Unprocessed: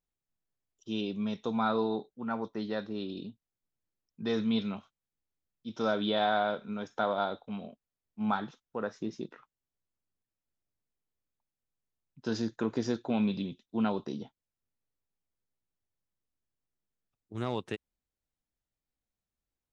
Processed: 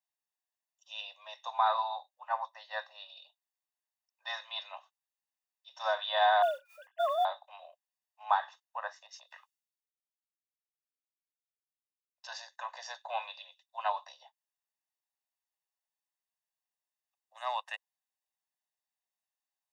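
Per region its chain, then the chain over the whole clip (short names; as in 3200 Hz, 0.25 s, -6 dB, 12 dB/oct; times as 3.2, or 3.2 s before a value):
6.42–7.25 sine-wave speech + modulation noise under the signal 30 dB
9.06–12.28 compressor, threshold -42 dBFS + three-band expander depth 100%
whole clip: steep high-pass 520 Hz 96 dB/oct; comb 1.1 ms, depth 98%; dynamic EQ 1300 Hz, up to +8 dB, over -44 dBFS, Q 0.86; gain -4 dB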